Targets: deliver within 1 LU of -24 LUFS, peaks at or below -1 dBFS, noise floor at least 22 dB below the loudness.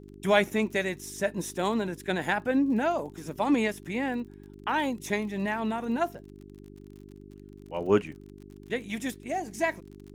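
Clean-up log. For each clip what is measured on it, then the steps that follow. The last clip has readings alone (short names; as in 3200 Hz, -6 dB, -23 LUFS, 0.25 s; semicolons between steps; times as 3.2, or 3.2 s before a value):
ticks 40/s; hum 50 Hz; harmonics up to 400 Hz; hum level -47 dBFS; loudness -29.0 LUFS; peak -7.5 dBFS; loudness target -24.0 LUFS
-> de-click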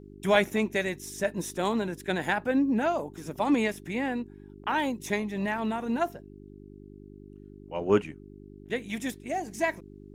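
ticks 0.20/s; hum 50 Hz; harmonics up to 400 Hz; hum level -48 dBFS
-> de-hum 50 Hz, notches 8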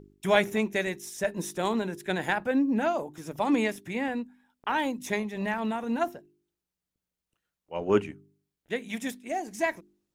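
hum none; loudness -29.5 LUFS; peak -7.5 dBFS; loudness target -24.0 LUFS
-> gain +5.5 dB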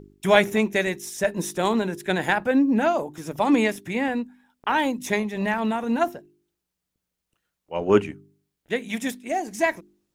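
loudness -24.0 LUFS; peak -2.0 dBFS; noise floor -83 dBFS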